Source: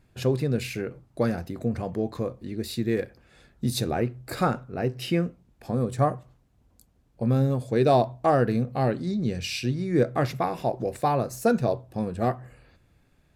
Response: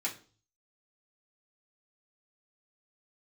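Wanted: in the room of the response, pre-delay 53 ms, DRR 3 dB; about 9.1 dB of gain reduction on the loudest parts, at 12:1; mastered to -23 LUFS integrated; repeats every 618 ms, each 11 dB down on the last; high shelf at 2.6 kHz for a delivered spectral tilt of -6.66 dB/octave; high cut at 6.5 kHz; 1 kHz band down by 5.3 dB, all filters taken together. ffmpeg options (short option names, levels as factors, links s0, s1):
-filter_complex "[0:a]lowpass=6500,equalizer=f=1000:t=o:g=-7.5,highshelf=f=2600:g=-6.5,acompressor=threshold=0.0447:ratio=12,aecho=1:1:618|1236|1854:0.282|0.0789|0.0221,asplit=2[s0][s1];[1:a]atrim=start_sample=2205,adelay=53[s2];[s1][s2]afir=irnorm=-1:irlink=0,volume=0.447[s3];[s0][s3]amix=inputs=2:normalize=0,volume=2.99"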